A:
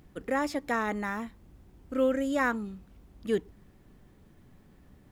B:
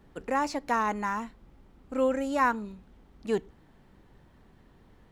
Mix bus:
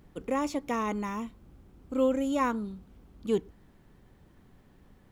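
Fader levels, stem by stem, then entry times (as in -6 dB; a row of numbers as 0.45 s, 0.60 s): -3.0 dB, -5.0 dB; 0.00 s, 0.00 s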